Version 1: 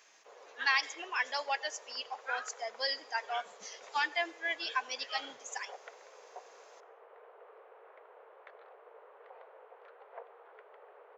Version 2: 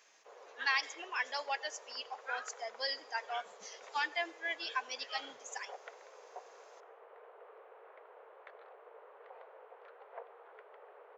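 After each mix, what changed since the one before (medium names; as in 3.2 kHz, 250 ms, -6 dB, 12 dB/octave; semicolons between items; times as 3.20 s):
speech -3.0 dB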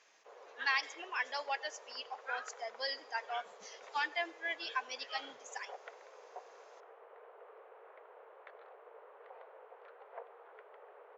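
master: add distance through air 54 m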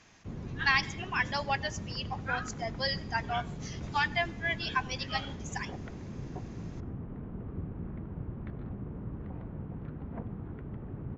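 speech +6.0 dB; background: remove steep high-pass 450 Hz 72 dB/octave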